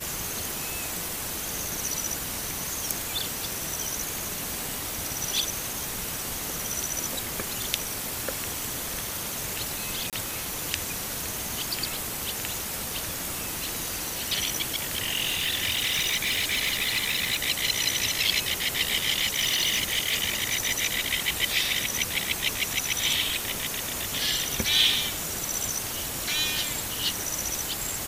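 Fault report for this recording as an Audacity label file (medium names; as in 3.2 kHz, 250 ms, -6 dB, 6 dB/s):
10.100000	10.130000	dropout 27 ms
14.910000	17.370000	clipped -21.5 dBFS
19.210000	20.820000	clipped -19 dBFS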